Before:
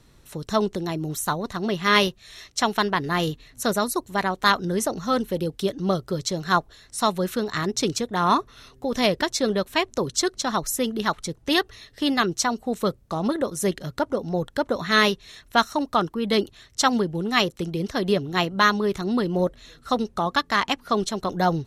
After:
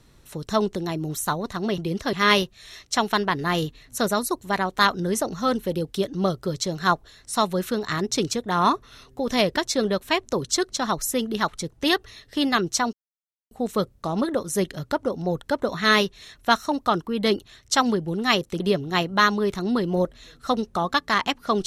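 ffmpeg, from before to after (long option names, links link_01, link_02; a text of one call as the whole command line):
ffmpeg -i in.wav -filter_complex "[0:a]asplit=5[link_01][link_02][link_03][link_04][link_05];[link_01]atrim=end=1.782[link_06];[link_02]atrim=start=17.668:end=18.022[link_07];[link_03]atrim=start=1.778:end=12.58,asetpts=PTS-STARTPTS,afade=type=out:start_time=10.798:duration=0.004:curve=hsin,apad=pad_dur=0.58[link_08];[link_04]atrim=start=12.58:end=17.672,asetpts=PTS-STARTPTS,afade=type=in:duration=0.004:curve=hsin[link_09];[link_05]atrim=start=18.018[link_10];[link_06][link_07]acrossfade=duration=0.004:curve1=hsin:curve2=hsin[link_11];[link_08][link_09]concat=n=2:v=0:a=1[link_12];[link_11][link_12]acrossfade=duration=0.004:curve1=hsin:curve2=hsin[link_13];[link_13][link_10]acrossfade=duration=0.004:curve1=hsin:curve2=hsin" out.wav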